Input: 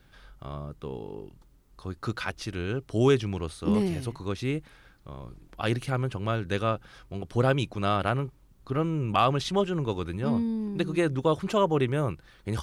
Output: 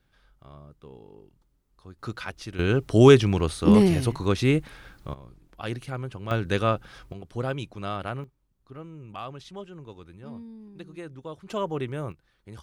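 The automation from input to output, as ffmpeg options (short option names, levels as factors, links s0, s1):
-af "asetnsamples=n=441:p=0,asendcmd='1.99 volume volume -3dB;2.59 volume volume 8dB;5.14 volume volume -5dB;6.31 volume volume 3.5dB;7.13 volume volume -6dB;8.24 volume volume -14.5dB;11.5 volume volume -5.5dB;12.12 volume volume -13dB',volume=0.316"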